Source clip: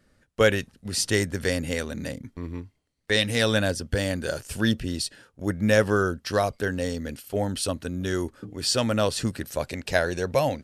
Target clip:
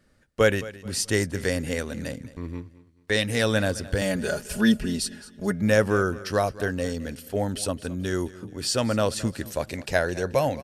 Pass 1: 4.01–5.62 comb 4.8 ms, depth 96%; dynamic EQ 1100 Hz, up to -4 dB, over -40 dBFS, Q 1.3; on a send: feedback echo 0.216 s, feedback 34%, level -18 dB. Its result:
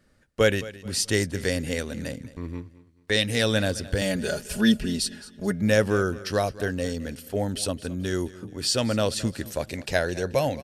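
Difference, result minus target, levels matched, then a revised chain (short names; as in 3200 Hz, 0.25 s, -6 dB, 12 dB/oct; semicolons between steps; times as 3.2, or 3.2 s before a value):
4000 Hz band +3.0 dB
4.01–5.62 comb 4.8 ms, depth 96%; dynamic EQ 3700 Hz, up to -4 dB, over -40 dBFS, Q 1.3; on a send: feedback echo 0.216 s, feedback 34%, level -18 dB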